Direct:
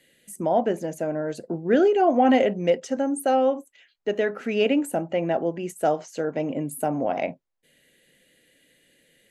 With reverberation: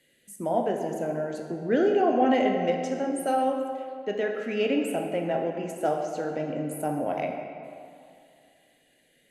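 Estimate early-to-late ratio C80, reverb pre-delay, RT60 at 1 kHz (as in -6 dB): 5.0 dB, 17 ms, 2.5 s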